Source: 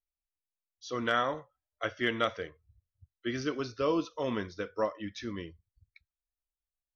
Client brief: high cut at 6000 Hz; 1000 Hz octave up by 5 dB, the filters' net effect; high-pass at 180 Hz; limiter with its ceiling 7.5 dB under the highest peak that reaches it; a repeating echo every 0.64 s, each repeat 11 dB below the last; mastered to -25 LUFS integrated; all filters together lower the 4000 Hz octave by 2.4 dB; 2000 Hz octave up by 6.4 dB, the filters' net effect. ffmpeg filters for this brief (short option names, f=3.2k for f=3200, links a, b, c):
-af "highpass=180,lowpass=6k,equalizer=f=1k:t=o:g=4,equalizer=f=2k:t=o:g=8,equalizer=f=4k:t=o:g=-7,alimiter=limit=-18.5dB:level=0:latency=1,aecho=1:1:640|1280|1920:0.282|0.0789|0.0221,volume=8.5dB"